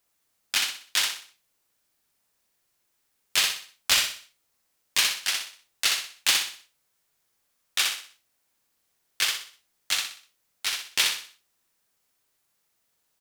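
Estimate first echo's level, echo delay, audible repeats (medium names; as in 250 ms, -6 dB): -4.0 dB, 62 ms, 4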